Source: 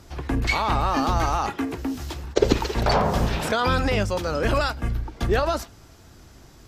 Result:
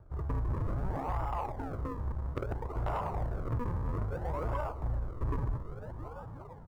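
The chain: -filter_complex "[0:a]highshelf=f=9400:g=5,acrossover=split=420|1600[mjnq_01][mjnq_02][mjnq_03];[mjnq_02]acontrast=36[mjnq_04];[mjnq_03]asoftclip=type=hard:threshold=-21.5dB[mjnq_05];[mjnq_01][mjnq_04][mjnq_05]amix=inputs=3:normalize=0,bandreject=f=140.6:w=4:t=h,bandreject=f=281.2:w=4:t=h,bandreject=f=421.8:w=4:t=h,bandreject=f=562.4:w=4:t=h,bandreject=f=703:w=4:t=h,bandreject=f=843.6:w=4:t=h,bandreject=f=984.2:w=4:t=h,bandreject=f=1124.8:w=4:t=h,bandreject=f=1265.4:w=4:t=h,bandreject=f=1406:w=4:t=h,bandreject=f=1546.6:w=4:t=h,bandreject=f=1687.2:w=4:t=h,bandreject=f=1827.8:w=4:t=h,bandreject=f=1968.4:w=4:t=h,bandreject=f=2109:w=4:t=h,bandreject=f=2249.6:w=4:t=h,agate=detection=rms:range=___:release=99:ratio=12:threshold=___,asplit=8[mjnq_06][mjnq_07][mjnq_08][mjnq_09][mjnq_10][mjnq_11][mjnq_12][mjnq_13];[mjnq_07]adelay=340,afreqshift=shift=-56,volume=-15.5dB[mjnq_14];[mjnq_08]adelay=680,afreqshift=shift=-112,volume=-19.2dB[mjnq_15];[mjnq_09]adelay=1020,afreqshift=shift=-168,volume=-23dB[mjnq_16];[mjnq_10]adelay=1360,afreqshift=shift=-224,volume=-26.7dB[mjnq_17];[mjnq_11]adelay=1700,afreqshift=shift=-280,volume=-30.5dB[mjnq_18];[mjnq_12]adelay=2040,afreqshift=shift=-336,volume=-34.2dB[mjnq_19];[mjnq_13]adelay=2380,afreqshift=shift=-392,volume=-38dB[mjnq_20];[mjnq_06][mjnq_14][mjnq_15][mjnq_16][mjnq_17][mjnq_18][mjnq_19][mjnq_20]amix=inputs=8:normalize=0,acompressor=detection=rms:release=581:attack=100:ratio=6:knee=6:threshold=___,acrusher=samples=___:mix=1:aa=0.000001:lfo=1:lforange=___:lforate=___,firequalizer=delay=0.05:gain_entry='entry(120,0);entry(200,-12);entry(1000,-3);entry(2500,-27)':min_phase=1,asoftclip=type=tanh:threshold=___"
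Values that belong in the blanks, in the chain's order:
-6dB, -35dB, -25dB, 42, 42, 0.6, -26dB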